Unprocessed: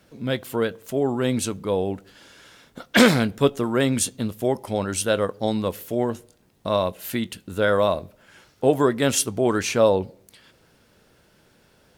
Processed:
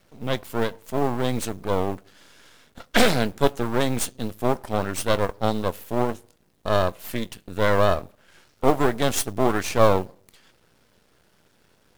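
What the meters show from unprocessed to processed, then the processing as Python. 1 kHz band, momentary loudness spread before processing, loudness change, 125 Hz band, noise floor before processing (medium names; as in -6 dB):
+2.5 dB, 9 LU, -1.5 dB, 0.0 dB, -60 dBFS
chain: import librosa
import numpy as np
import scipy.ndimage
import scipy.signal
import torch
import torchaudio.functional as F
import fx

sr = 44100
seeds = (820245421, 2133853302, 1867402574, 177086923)

y = fx.mod_noise(x, sr, seeds[0], snr_db=27)
y = fx.dynamic_eq(y, sr, hz=710.0, q=2.0, threshold_db=-35.0, ratio=4.0, max_db=6)
y = np.maximum(y, 0.0)
y = y * librosa.db_to_amplitude(1.0)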